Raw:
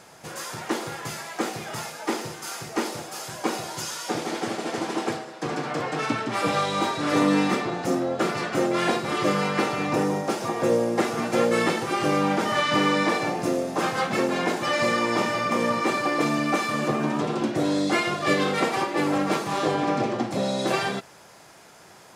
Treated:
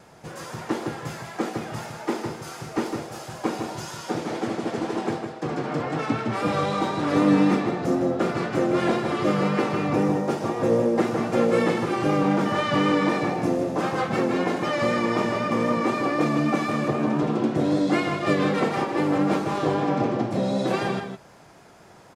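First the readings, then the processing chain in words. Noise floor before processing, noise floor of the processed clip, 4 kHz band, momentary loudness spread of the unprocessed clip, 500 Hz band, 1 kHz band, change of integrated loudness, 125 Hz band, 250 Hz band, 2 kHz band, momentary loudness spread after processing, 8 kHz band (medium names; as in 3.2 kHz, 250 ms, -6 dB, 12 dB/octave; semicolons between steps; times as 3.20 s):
-50 dBFS, -49 dBFS, -5.0 dB, 9 LU, +1.0 dB, -1.0 dB, +1.0 dB, +4.0 dB, +3.0 dB, -3.0 dB, 10 LU, -7.0 dB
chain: tilt EQ -2 dB/octave; vibrato 3.9 Hz 37 cents; echo from a far wall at 27 m, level -6 dB; trim -2 dB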